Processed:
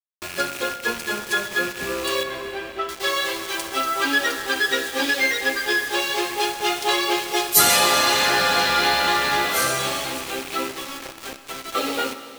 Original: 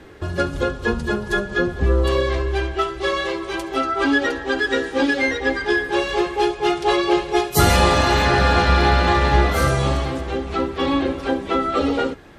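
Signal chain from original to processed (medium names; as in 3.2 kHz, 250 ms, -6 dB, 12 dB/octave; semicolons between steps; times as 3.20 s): rattle on loud lows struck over -28 dBFS, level -26 dBFS; high-pass 140 Hz 12 dB/octave; tilt EQ +3.5 dB/octave; 10.71–11.75 s: compression 10:1, threshold -30 dBFS, peak gain reduction 13 dB; bit crusher 5-bit; 2.23–2.89 s: tape spacing loss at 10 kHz 31 dB; Schroeder reverb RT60 2.9 s, combs from 27 ms, DRR 10 dB; trim -2.5 dB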